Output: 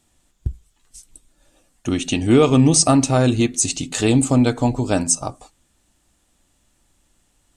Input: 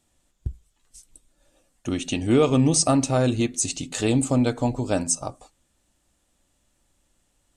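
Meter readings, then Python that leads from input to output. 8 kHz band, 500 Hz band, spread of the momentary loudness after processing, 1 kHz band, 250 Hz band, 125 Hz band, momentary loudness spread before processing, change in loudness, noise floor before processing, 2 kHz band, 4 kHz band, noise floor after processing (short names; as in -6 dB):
+5.5 dB, +4.0 dB, 18 LU, +5.0 dB, +5.5 dB, +5.5 dB, 19 LU, +5.0 dB, -70 dBFS, +5.5 dB, +5.5 dB, -65 dBFS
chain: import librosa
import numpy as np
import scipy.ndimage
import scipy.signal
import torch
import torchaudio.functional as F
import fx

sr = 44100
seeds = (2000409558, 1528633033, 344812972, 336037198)

y = fx.peak_eq(x, sr, hz=550.0, db=-4.5, octaves=0.32)
y = y * 10.0 ** (5.5 / 20.0)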